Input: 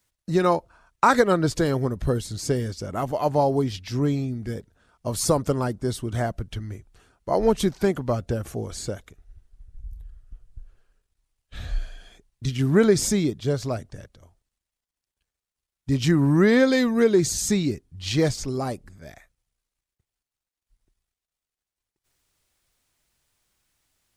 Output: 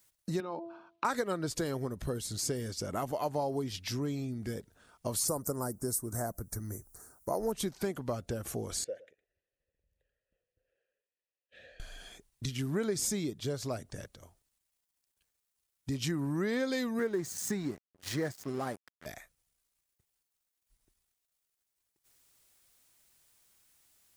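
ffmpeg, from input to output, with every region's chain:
-filter_complex "[0:a]asettb=1/sr,asplit=3[s0][s1][s2];[s0]atrim=end=0.404[s3];[s1]atrim=start=0.4:end=1.05,asetpts=PTS-STARTPTS,afade=t=in:d=0.004:c=qsin,afade=t=out:st=0.646:d=0.004:c=qsin,bandreject=f=336.4:t=h:w=4,bandreject=f=672.8:t=h:w=4,bandreject=f=1009.2:t=h:w=4,acompressor=threshold=0.0398:ratio=5:attack=3.2:release=140:knee=1:detection=peak,highpass=170,equalizer=f=210:t=q:w=4:g=5,equalizer=f=310:t=q:w=4:g=6,equalizer=f=910:t=q:w=4:g=3,equalizer=f=1900:t=q:w=4:g=-10,lowpass=f=3900:w=0.5412,lowpass=f=3900:w=1.3066[s4];[s2]atrim=start=1.046[s5];[s3][s4]acrossfade=d=0.004:c1=hsin:c2=qsin[s6];[s6][s5]acrossfade=d=0.004:c1=qsin:c2=hsin,asettb=1/sr,asplit=3[s7][s8][s9];[s7]atrim=end=5.284[s10];[s8]atrim=start=5.28:end=7.52,asetpts=PTS-STARTPTS,afade=t=in:d=0.004:c=qsin,afade=t=out:st=2.236:d=0.004:c=qsin,asuperstop=centerf=3000:order=4:qfactor=0.68,aemphasis=mode=production:type=50fm[s11];[s9]atrim=start=7.516[s12];[s10][s11]acrossfade=d=0.004:c1=hsin:c2=qsin[s13];[s13][s12]acrossfade=d=0.004:c1=qsin:c2=hsin,asettb=1/sr,asplit=3[s14][s15][s16];[s14]atrim=end=8.844[s17];[s15]atrim=start=8.84:end=11.8,asetpts=PTS-STARTPTS,afade=t=in:d=0.004:c=qsin,afade=t=out:st=2.956:d=0.004:c=qsin,asplit=3[s18][s19][s20];[s18]bandpass=f=530:t=q:w=8,volume=1[s21];[s19]bandpass=f=1840:t=q:w=8,volume=0.501[s22];[s20]bandpass=f=2480:t=q:w=8,volume=0.355[s23];[s21][s22][s23]amix=inputs=3:normalize=0,aecho=1:1:111:0.0944,atrim=end_sample=130536[s24];[s16]atrim=start=11.796[s25];[s17][s24]acrossfade=d=0.004:c1=hsin:c2=qsin[s26];[s26][s25]acrossfade=d=0.004:c1=qsin:c2=hsin,asettb=1/sr,asplit=3[s27][s28][s29];[s27]atrim=end=16.994[s30];[s28]atrim=start=16.99:end=19.06,asetpts=PTS-STARTPTS,afade=t=in:d=0.004:c=qsin,afade=t=out:st=2.066:d=0.004:c=qsin,highpass=110,highshelf=f=2200:t=q:w=3:g=-6.5,aeval=exprs='sgn(val(0))*max(abs(val(0))-0.01,0)':c=same[s31];[s29]atrim=start=19.056[s32];[s30][s31]acrossfade=d=0.004:c1=hsin:c2=qsin[s33];[s33][s32]acrossfade=d=0.004:c1=qsin:c2=hsin,highshelf=f=7800:g=10.5,acompressor=threshold=0.0224:ratio=3,lowshelf=f=100:g=-8.5"

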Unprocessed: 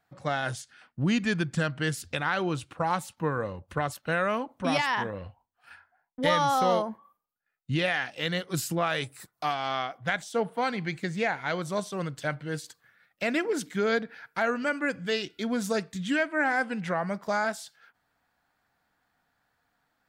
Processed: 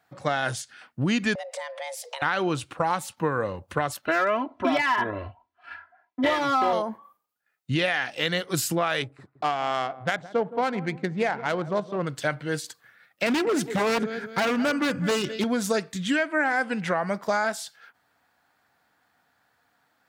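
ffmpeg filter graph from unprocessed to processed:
-filter_complex "[0:a]asettb=1/sr,asplit=3[s0][s1][s2];[s0]atrim=end=1.354[s3];[s1]atrim=start=1.35:end=2.22,asetpts=PTS-STARTPTS,afade=t=in:d=0.004:c=qsin,afade=t=out:st=0.866:d=0.004:c=qsin,acompressor=threshold=0.0112:ratio=5:attack=3.2:release=140:knee=1:detection=peak,afreqshift=400[s4];[s2]atrim=start=2.216[s5];[s3][s4]acrossfade=d=0.004:c1=hsin:c2=qsin[s6];[s6][s5]acrossfade=d=0.004:c1=qsin:c2=hsin,asettb=1/sr,asplit=3[s7][s8][s9];[s7]atrim=end=4.064[s10];[s8]atrim=start=4.06:end=6.73,asetpts=PTS-STARTPTS,afade=t=in:d=0.004:c=qsin,afade=t=out:st=2.666:d=0.004:c=qsin,lowpass=3000,aeval=exprs='clip(val(0),-1,0.0944)':c=same,aecho=1:1:3:0.99,atrim=end_sample=117747[s11];[s9]atrim=start=6.726[s12];[s10][s11]acrossfade=d=0.004:c1=hsin:c2=qsin[s13];[s13][s12]acrossfade=d=0.004:c1=qsin:c2=hsin,asettb=1/sr,asplit=3[s14][s15][s16];[s14]atrim=end=9.024[s17];[s15]atrim=start=9.02:end=12.07,asetpts=PTS-STARTPTS,afade=t=in:d=0.004:c=qsin,afade=t=out:st=3.046:d=0.004:c=qsin,equalizer=f=1800:t=o:w=1.2:g=-3,asplit=2[s18][s19];[s19]adelay=166,lowpass=f=850:p=1,volume=0.188,asplit=2[s20][s21];[s21]adelay=166,lowpass=f=850:p=1,volume=0.41,asplit=2[s22][s23];[s23]adelay=166,lowpass=f=850:p=1,volume=0.41,asplit=2[s24][s25];[s25]adelay=166,lowpass=f=850:p=1,volume=0.41[s26];[s18][s20][s22][s24][s26]amix=inputs=5:normalize=0,atrim=end_sample=134505,adynamicsmooth=sensitivity=2.5:basefreq=1400[s27];[s16]atrim=start=12.066[s28];[s17][s27]acrossfade=d=0.004:c1=hsin:c2=qsin[s29];[s29][s28]acrossfade=d=0.004:c1=qsin:c2=hsin,asettb=1/sr,asplit=3[s30][s31][s32];[s30]atrim=end=13.264[s33];[s31]atrim=start=13.26:end=15.44,asetpts=PTS-STARTPTS,afade=t=in:d=0.004:c=qsin,afade=t=out:st=2.176:d=0.004:c=qsin,equalizer=f=120:t=o:w=2.2:g=12,aecho=1:1:208|416|624:0.158|0.0602|0.0229,atrim=end_sample=96138,aeval=exprs='0.0841*(abs(mod(val(0)/0.0841+3,4)-2)-1)':c=same[s34];[s32]atrim=start=15.436[s35];[s33][s34]acrossfade=d=0.004:c1=hsin:c2=qsin[s36];[s36][s35]acrossfade=d=0.004:c1=qsin:c2=hsin,highpass=98,equalizer=f=170:t=o:w=0.94:g=-4,acompressor=threshold=0.0447:ratio=4,volume=2.11"

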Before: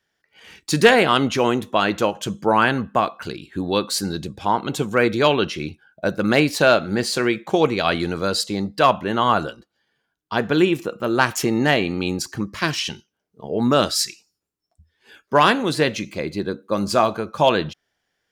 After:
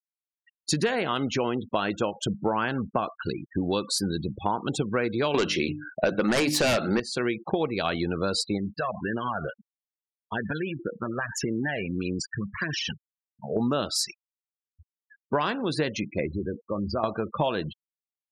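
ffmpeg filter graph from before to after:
-filter_complex "[0:a]asettb=1/sr,asplit=3[s0][s1][s2];[s0]atrim=end=5.344[s3];[s1]atrim=start=5.34:end=7,asetpts=PTS-STARTPTS,afade=t=in:d=0.004:c=qsin,afade=t=out:st=1.656:d=0.004:c=qsin,highpass=f=230:p=1,bandreject=f=50:t=h:w=6,bandreject=f=100:t=h:w=6,bandreject=f=150:t=h:w=6,bandreject=f=200:t=h:w=6,bandreject=f=250:t=h:w=6,bandreject=f=300:t=h:w=6,aeval=exprs='0.708*sin(PI/2*3.55*val(0)/0.708)':c=same[s4];[s2]atrim=start=6.996[s5];[s3][s4]acrossfade=d=0.004:c1=hsin:c2=qsin[s6];[s6][s5]acrossfade=d=0.004:c1=qsin:c2=hsin,asettb=1/sr,asplit=3[s7][s8][s9];[s7]atrim=end=8.574[s10];[s8]atrim=start=8.57:end=13.56,asetpts=PTS-STARTPTS,afade=t=in:d=0.004:c=qsin,afade=t=out:st=4.986:d=0.004:c=qsin,equalizer=f=1700:t=o:w=0.33:g=9.5,acompressor=threshold=0.0891:ratio=6:attack=3.2:release=140:knee=1:detection=peak,flanger=delay=0.3:depth=1.5:regen=-31:speed=1.7:shape=triangular[s11];[s9]atrim=start=13.556[s12];[s10][s11]acrossfade=d=0.004:c1=hsin:c2=qsin[s13];[s13][s12]acrossfade=d=0.004:c1=qsin:c2=hsin,asettb=1/sr,asplit=3[s14][s15][s16];[s14]atrim=end=16.264[s17];[s15]atrim=start=16.26:end=17.04,asetpts=PTS-STARTPTS,afade=t=in:d=0.004:c=qsin,afade=t=out:st=0.776:d=0.004:c=qsin,lowpass=f=2800:p=1,acompressor=threshold=0.0251:ratio=2:attack=3.2:release=140:knee=1:detection=peak,equalizer=f=83:t=o:w=0.31:g=12.5[s18];[s16]atrim=start=17.036[s19];[s17][s18]acrossfade=d=0.004:c1=hsin:c2=qsin[s20];[s20][s19]acrossfade=d=0.004:c1=qsin:c2=hsin,afftfilt=real='re*gte(hypot(re,im),0.0355)':imag='im*gte(hypot(re,im),0.0355)':win_size=1024:overlap=0.75,lowshelf=f=490:g=2,acompressor=threshold=0.0708:ratio=6"

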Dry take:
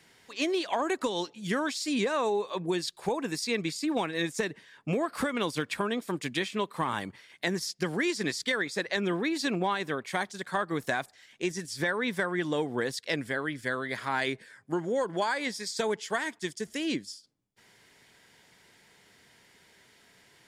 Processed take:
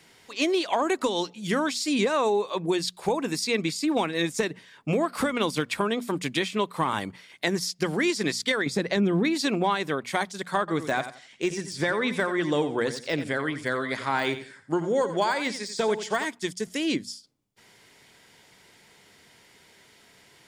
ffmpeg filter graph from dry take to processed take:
-filter_complex "[0:a]asettb=1/sr,asplit=3[s0][s1][s2];[s0]atrim=end=8.664[s3];[s1]atrim=start=8.66:end=9.25,asetpts=PTS-STARTPTS,afade=t=in:d=0.004:c=qsin,afade=t=out:st=0.586:d=0.004:c=qsin,equalizer=f=160:w=0.48:g=13.5,acompressor=threshold=0.0562:ratio=3:attack=3.2:release=140:knee=1:detection=peak[s4];[s2]atrim=start=9.246[s5];[s3][s4]acrossfade=d=0.004:c1=hsin:c2=qsin[s6];[s6][s5]acrossfade=d=0.004:c1=qsin:c2=hsin,asettb=1/sr,asplit=3[s7][s8][s9];[s7]atrim=end=10.594[s10];[s8]atrim=start=10.59:end=16.25,asetpts=PTS-STARTPTS,afade=t=in:d=0.004:c=qsin,afade=t=out:st=5.656:d=0.004:c=qsin,lowpass=f=9900:w=0.5412,lowpass=f=9900:w=1.3066,deesser=0.9,aecho=1:1:88|176|264:0.266|0.0665|0.0166,atrim=end_sample=249606[s11];[s9]atrim=start=16.246[s12];[s10][s11]acrossfade=d=0.004:c1=hsin:c2=qsin[s13];[s13][s12]acrossfade=d=0.004:c1=qsin:c2=hsin,equalizer=f=1700:t=o:w=0.23:g=-4.5,bandreject=f=60:t=h:w=6,bandreject=f=120:t=h:w=6,bandreject=f=180:t=h:w=6,bandreject=f=240:t=h:w=6,volume=1.68"

